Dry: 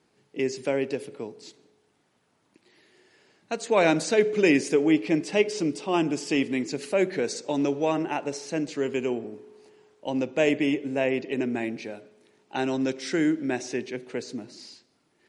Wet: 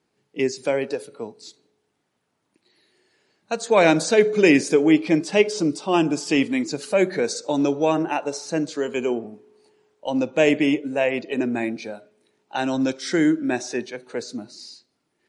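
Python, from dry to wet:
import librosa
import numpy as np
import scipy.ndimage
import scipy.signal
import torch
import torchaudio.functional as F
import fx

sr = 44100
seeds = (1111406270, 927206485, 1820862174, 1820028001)

y = fx.noise_reduce_blind(x, sr, reduce_db=10)
y = F.gain(torch.from_numpy(y), 5.0).numpy()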